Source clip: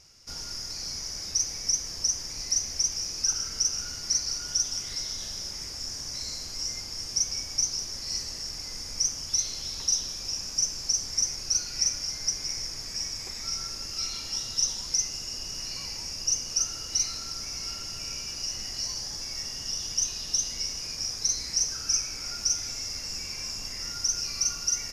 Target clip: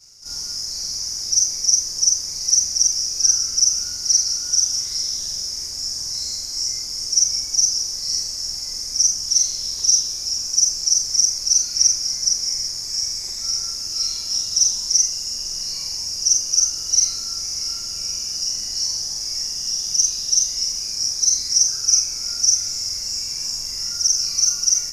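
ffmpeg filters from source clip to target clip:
-af "afftfilt=real='re':imag='-im':win_size=4096:overlap=0.75,highshelf=f=4200:t=q:w=1.5:g=9,volume=1.5"

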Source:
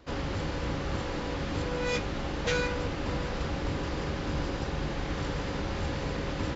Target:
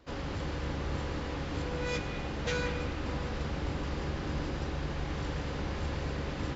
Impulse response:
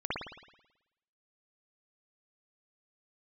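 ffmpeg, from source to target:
-filter_complex "[0:a]asplit=2[s0][s1];[1:a]atrim=start_sample=2205,asetrate=42777,aresample=44100,adelay=111[s2];[s1][s2]afir=irnorm=-1:irlink=0,volume=0.224[s3];[s0][s3]amix=inputs=2:normalize=0,volume=0.596"

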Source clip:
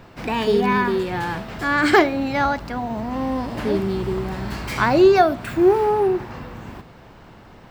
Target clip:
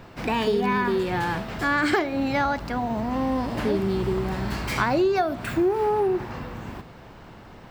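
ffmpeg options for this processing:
-af "acompressor=threshold=0.112:ratio=6"

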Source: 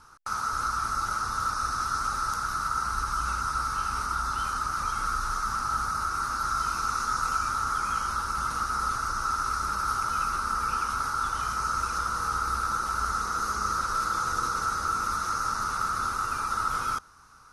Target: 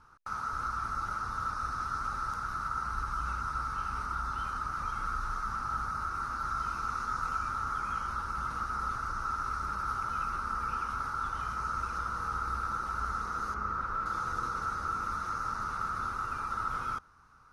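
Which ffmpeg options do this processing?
-filter_complex "[0:a]bass=f=250:g=3,treble=f=4000:g=-12,asettb=1/sr,asplit=3[s0][s1][s2];[s0]atrim=end=13.544[s3];[s1]atrim=start=13.54:end=14.06,asetpts=PTS-STARTPTS,afade=t=in:d=0.004:c=qsin,afade=t=out:st=0.516:d=0.004:c=qsin,acrossover=split=3000[s4][s5];[s5]acompressor=threshold=0.001:ratio=4:attack=1:release=60[s6];[s4][s6]amix=inputs=2:normalize=0[s7];[s2]atrim=start=14.056[s8];[s3][s7]acrossfade=d=0.004:c1=hsin:c2=qsin[s9];[s9][s8]acrossfade=d=0.004:c1=qsin:c2=hsin,volume=0.531"

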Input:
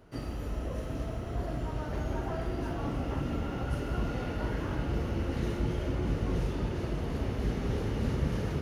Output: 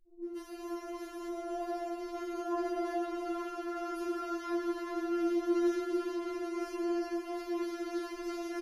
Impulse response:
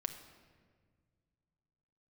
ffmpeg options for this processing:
-filter_complex "[0:a]asettb=1/sr,asplit=3[s0][s1][s2];[s0]atrim=end=6.284[s3];[s1]atrim=start=6.28:end=7.03,asetpts=PTS-STARTPTS,afade=t=in:d=0.004:c=qsin,afade=t=out:st=0.746:d=0.004:c=qsin,asuperstop=centerf=3700:order=4:qfactor=4.8[s4];[s2]atrim=start=7.026[s5];[s3][s4]acrossfade=d=0.004:c1=hsin:c2=qsin[s6];[s6][s5]acrossfade=d=0.004:c1=qsin:c2=hsin,acrossover=split=150|500[s7][s8][s9];[s8]adelay=70[s10];[s9]adelay=240[s11];[s7][s10][s11]amix=inputs=3:normalize=0[s12];[1:a]atrim=start_sample=2205,asetrate=28665,aresample=44100[s13];[s12][s13]afir=irnorm=-1:irlink=0,afftfilt=real='re*4*eq(mod(b,16),0)':imag='im*4*eq(mod(b,16),0)':win_size=2048:overlap=0.75"

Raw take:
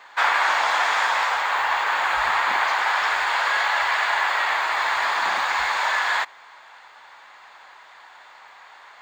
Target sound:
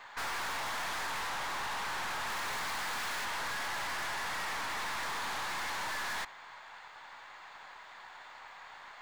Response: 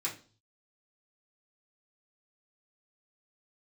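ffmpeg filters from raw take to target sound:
-filter_complex "[0:a]asettb=1/sr,asplit=3[s0][s1][s2];[s0]atrim=end=2.284[s3];[s1]atrim=start=2.28:end=3.25,asetpts=PTS-STARTPTS,afade=t=in:d=0.004:c=qsin,afade=t=out:st=0.966:d=0.004:c=qsin,highshelf=f=4200:g=10[s4];[s2]atrim=start=3.246[s5];[s3][s4]acrossfade=d=0.004:c1=hsin:c2=qsin[s6];[s6][s5]acrossfade=d=0.004:c1=qsin:c2=hsin,aeval=exprs='(tanh(50.1*val(0)+0.45)-tanh(0.45))/50.1':c=same,volume=0.794"

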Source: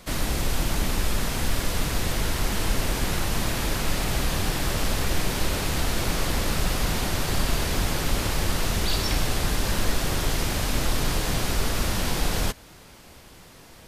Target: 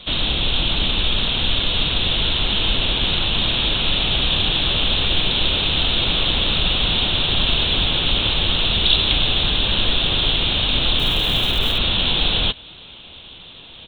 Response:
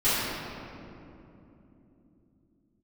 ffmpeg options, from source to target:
-filter_complex "[0:a]aexciter=amount=10.9:drive=6.8:freq=3000,aresample=8000,aresample=44100,asettb=1/sr,asplit=3[s0][s1][s2];[s0]atrim=end=10.994[s3];[s1]atrim=start=10.99:end=11.78,asetpts=PTS-STARTPTS,afade=t=in:d=0.004:c=qsin,afade=t=out:st=0.786:d=0.004:c=qsin,acrusher=bits=7:dc=4:mix=0:aa=0.000001[s4];[s2]atrim=start=11.776[s5];[s3][s4]acrossfade=d=0.004:c1=hsin:c2=qsin[s6];[s6][s5]acrossfade=d=0.004:c1=qsin:c2=hsin,volume=1.26"

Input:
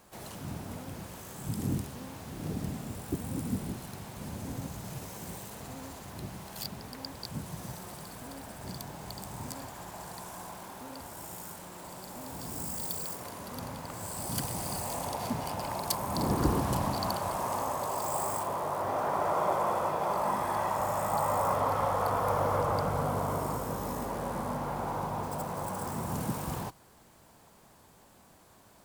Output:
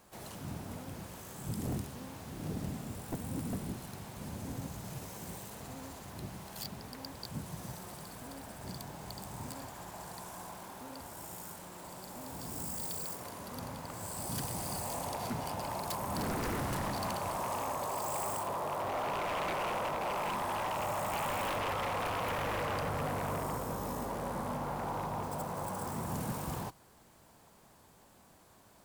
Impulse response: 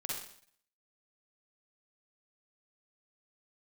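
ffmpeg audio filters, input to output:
-af "aeval=exprs='0.0447*(abs(mod(val(0)/0.0447+3,4)-2)-1)':c=same,volume=0.75"

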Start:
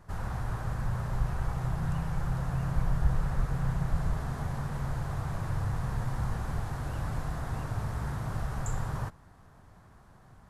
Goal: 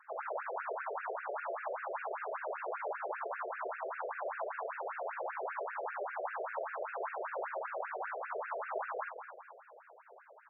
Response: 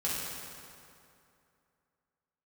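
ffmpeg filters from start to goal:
-filter_complex "[0:a]lowpass=f=5100:t=q:w=4.9,equalizer=f=270:w=0.81:g=6.5,asplit=2[s0][s1];[s1]aecho=0:1:216|432|648|864|1080:0.355|0.156|0.0687|0.0302|0.0133[s2];[s0][s2]amix=inputs=2:normalize=0,afreqshift=-140,afftfilt=real='re*between(b*sr/1024,490*pow(2000/490,0.5+0.5*sin(2*PI*5.1*pts/sr))/1.41,490*pow(2000/490,0.5+0.5*sin(2*PI*5.1*pts/sr))*1.41)':imag='im*between(b*sr/1024,490*pow(2000/490,0.5+0.5*sin(2*PI*5.1*pts/sr))/1.41,490*pow(2000/490,0.5+0.5*sin(2*PI*5.1*pts/sr))*1.41)':win_size=1024:overlap=0.75,volume=2.24"

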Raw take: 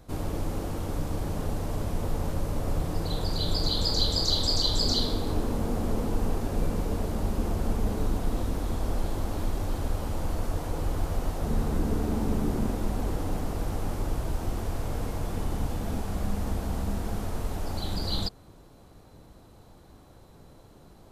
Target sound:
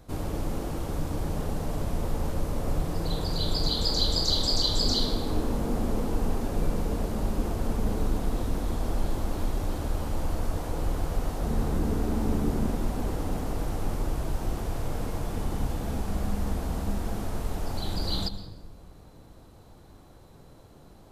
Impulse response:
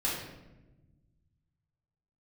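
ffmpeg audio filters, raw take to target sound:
-filter_complex "[0:a]asplit=2[s0][s1];[1:a]atrim=start_sample=2205,adelay=109[s2];[s1][s2]afir=irnorm=-1:irlink=0,volume=0.106[s3];[s0][s3]amix=inputs=2:normalize=0"

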